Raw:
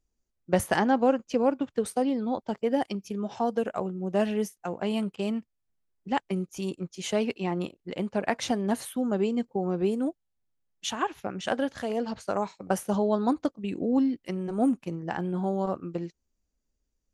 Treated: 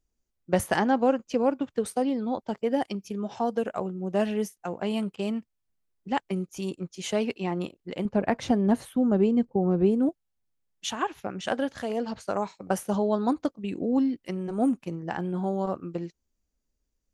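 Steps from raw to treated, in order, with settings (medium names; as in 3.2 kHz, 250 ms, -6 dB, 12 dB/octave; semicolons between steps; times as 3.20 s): 8.05–10.09 s: tilt EQ -2.5 dB/octave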